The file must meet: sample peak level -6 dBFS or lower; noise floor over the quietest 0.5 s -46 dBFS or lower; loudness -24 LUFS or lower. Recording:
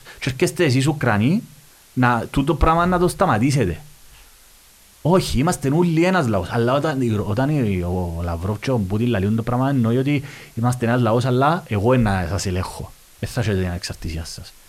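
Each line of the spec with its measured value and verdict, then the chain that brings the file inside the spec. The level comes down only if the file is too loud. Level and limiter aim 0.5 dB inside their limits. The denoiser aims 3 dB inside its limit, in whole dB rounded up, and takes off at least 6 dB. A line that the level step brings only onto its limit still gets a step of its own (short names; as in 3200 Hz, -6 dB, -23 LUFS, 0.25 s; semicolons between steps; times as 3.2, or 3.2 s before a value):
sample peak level -3.5 dBFS: fail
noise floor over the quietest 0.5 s -49 dBFS: OK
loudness -20.0 LUFS: fail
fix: gain -4.5 dB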